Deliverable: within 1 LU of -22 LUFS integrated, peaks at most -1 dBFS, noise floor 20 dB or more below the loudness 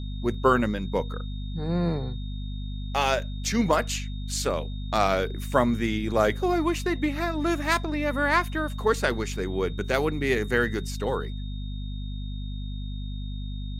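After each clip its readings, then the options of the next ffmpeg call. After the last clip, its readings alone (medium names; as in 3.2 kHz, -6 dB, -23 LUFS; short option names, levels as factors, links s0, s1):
hum 50 Hz; highest harmonic 250 Hz; hum level -30 dBFS; steady tone 3.7 kHz; tone level -47 dBFS; loudness -27.0 LUFS; peak level -6.0 dBFS; loudness target -22.0 LUFS
-> -af "bandreject=f=50:t=h:w=4,bandreject=f=100:t=h:w=4,bandreject=f=150:t=h:w=4,bandreject=f=200:t=h:w=4,bandreject=f=250:t=h:w=4"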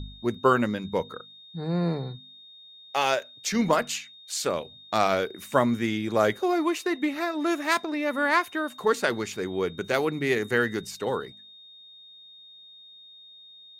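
hum not found; steady tone 3.7 kHz; tone level -47 dBFS
-> -af "bandreject=f=3700:w=30"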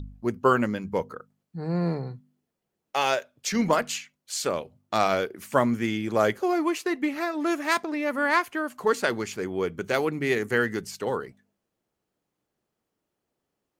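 steady tone not found; loudness -26.5 LUFS; peak level -6.0 dBFS; loudness target -22.0 LUFS
-> -af "volume=1.68"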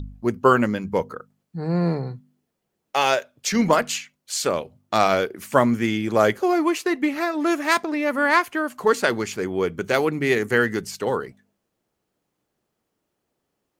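loudness -22.0 LUFS; peak level -1.5 dBFS; noise floor -78 dBFS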